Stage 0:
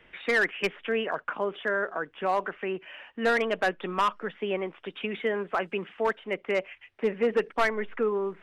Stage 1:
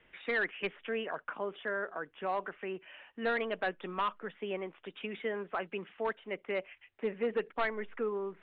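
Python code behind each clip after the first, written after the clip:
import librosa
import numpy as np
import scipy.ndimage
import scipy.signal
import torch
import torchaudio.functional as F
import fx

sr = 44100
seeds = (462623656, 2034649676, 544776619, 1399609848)

y = scipy.signal.sosfilt(scipy.signal.butter(12, 4100.0, 'lowpass', fs=sr, output='sos'), x)
y = y * 10.0 ** (-7.5 / 20.0)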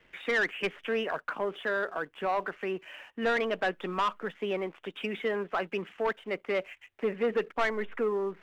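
y = fx.leveller(x, sr, passes=1)
y = y * 10.0 ** (2.5 / 20.0)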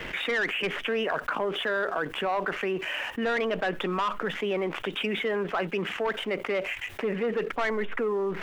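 y = fx.env_flatten(x, sr, amount_pct=70)
y = y * 10.0 ** (-1.5 / 20.0)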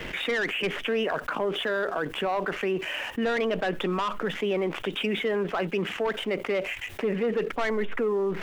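y = fx.peak_eq(x, sr, hz=1400.0, db=-4.5, octaves=2.3)
y = y * 10.0 ** (3.0 / 20.0)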